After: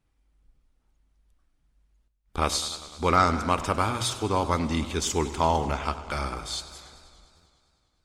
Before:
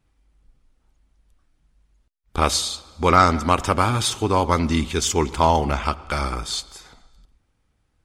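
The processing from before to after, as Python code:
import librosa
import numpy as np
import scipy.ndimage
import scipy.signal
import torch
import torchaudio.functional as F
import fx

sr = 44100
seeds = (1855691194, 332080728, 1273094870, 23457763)

y = fx.hum_notches(x, sr, base_hz=60, count=2)
y = fx.buffer_glitch(y, sr, at_s=(7.36,), block=512, repeats=8)
y = fx.echo_warbled(y, sr, ms=100, feedback_pct=76, rate_hz=2.8, cents=107, wet_db=-16.0)
y = F.gain(torch.from_numpy(y), -6.0).numpy()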